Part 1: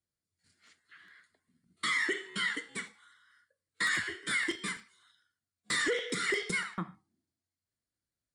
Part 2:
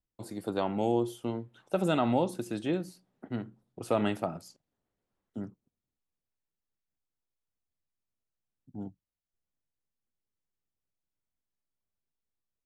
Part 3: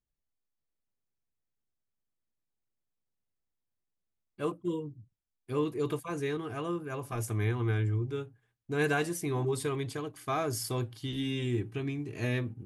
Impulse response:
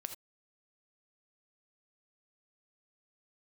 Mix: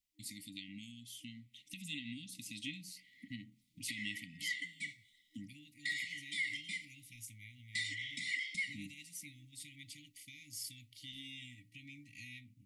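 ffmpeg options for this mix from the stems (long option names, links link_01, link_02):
-filter_complex "[0:a]lowpass=frequency=2700:poles=1,adelay=2050,volume=-6dB[link_01];[1:a]dynaudnorm=framelen=940:gausssize=5:maxgain=5.5dB,volume=-0.5dB[link_02];[2:a]acompressor=threshold=-35dB:ratio=6,volume=-10dB[link_03];[link_01][link_02]amix=inputs=2:normalize=0,acompressor=threshold=-40dB:ratio=2.5,volume=0dB[link_04];[link_03][link_04]amix=inputs=2:normalize=0,tiltshelf=frequency=690:gain=-9.5,afftfilt=real='re*(1-between(b*sr/4096,310,1900))':imag='im*(1-between(b*sr/4096,310,1900))':win_size=4096:overlap=0.75,highshelf=frequency=5000:gain=-4"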